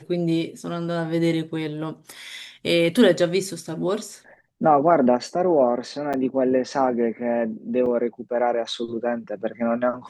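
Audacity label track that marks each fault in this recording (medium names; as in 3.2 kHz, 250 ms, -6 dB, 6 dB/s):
6.130000	6.140000	dropout 7.2 ms
7.860000	7.860000	dropout 2.4 ms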